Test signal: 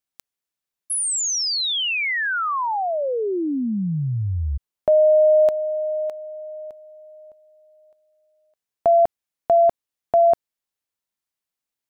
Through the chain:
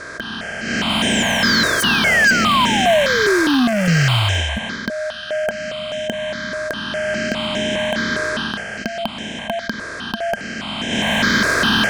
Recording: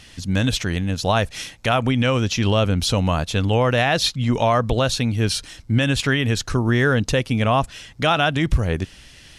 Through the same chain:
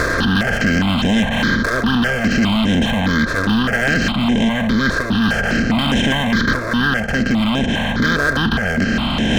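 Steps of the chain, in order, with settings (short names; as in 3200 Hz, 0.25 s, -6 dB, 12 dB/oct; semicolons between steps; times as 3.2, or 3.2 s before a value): per-bin compression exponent 0.2; AGC; air absorption 130 m; small resonant body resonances 220/1600/3100 Hz, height 17 dB, ringing for 65 ms; in parallel at +2 dB: compressor 6:1, threshold -22 dBFS; on the sum: hard clip -8.5 dBFS; low shelf 370 Hz -3.5 dB; step phaser 4.9 Hz 810–4500 Hz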